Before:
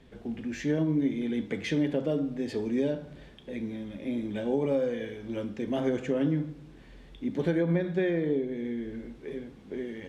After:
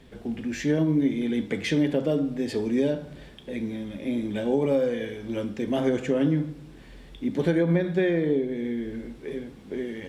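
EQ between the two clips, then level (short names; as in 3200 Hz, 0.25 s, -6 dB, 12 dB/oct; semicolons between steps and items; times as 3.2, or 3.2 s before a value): high shelf 6300 Hz +7.5 dB; notch 6400 Hz, Q 23; +4.0 dB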